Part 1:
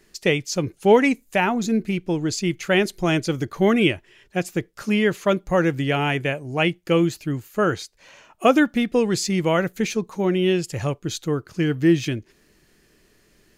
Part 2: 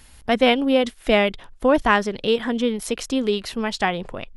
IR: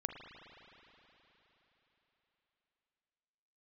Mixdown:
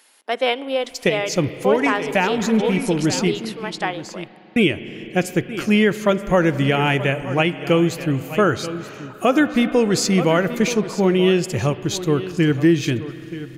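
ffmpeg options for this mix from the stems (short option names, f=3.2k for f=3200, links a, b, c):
-filter_complex "[0:a]adelay=800,volume=1.5dB,asplit=3[a][b][c];[a]atrim=end=3.39,asetpts=PTS-STARTPTS,afade=t=out:st=3.386:d=0.004:c=hsin[d];[b]atrim=start=3.39:end=4.56,asetpts=PTS-STARTPTS,volume=0[e];[c]atrim=start=4.56,asetpts=PTS-STARTPTS,afade=t=in:d=0.004:c=hsin[f];[d][e][f]concat=n=3:v=0:a=1,asplit=3[g][h][i];[h]volume=-6dB[j];[i]volume=-12dB[k];[1:a]highpass=f=340:w=0.5412,highpass=f=340:w=1.3066,volume=-4dB,asplit=3[l][m][n];[m]volume=-11.5dB[o];[n]apad=whole_len=634100[p];[g][p]sidechaincompress=threshold=-30dB:ratio=8:attack=16:release=156[q];[2:a]atrim=start_sample=2205[r];[j][o]amix=inputs=2:normalize=0[s];[s][r]afir=irnorm=-1:irlink=0[t];[k]aecho=0:1:929:1[u];[q][l][t][u]amix=inputs=4:normalize=0,alimiter=limit=-6.5dB:level=0:latency=1:release=256"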